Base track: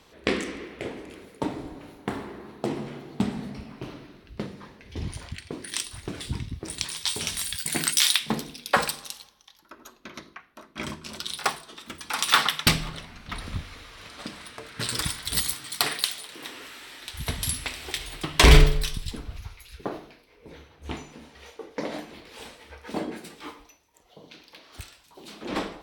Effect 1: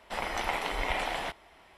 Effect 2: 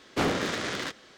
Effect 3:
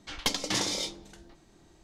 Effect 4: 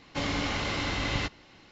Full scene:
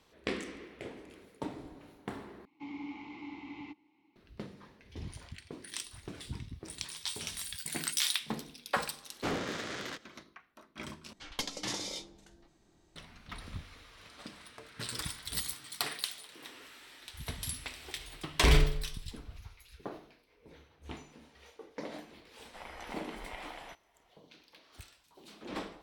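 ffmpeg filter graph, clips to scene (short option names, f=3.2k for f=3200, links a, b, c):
-filter_complex "[0:a]volume=-10dB[a];[4:a]asplit=3[b][c][d];[b]bandpass=f=300:t=q:w=8,volume=0dB[e];[c]bandpass=f=870:t=q:w=8,volume=-6dB[f];[d]bandpass=f=2.24k:t=q:w=8,volume=-9dB[g];[e][f][g]amix=inputs=3:normalize=0[h];[a]asplit=3[i][j][k];[i]atrim=end=2.454[l];[h]atrim=end=1.71,asetpts=PTS-STARTPTS,volume=-4dB[m];[j]atrim=start=4.156:end=11.134[n];[3:a]atrim=end=1.83,asetpts=PTS-STARTPTS,volume=-8dB[o];[k]atrim=start=12.956[p];[2:a]atrim=end=1.17,asetpts=PTS-STARTPTS,volume=-8dB,afade=t=in:d=0.004:c=hsin,afade=t=out:st=1.166:d=0.004:c=hsin,adelay=399546S[q];[1:a]atrim=end=1.77,asetpts=PTS-STARTPTS,volume=-14dB,afade=t=in:d=0.004:c=hsin,afade=t=out:st=1.766:d=0.004:c=hsin,adelay=22430[r];[l][m]acrossfade=d=0.004:c1=hsin:c2=hsin[s];[s][n]acrossfade=d=0.004:c1=hsin:c2=hsin[t];[t][o]acrossfade=d=0.004:c1=hsin:c2=hsin[u];[u][p]acrossfade=d=0.004:c1=hsin:c2=hsin[v];[v][q][r]amix=inputs=3:normalize=0"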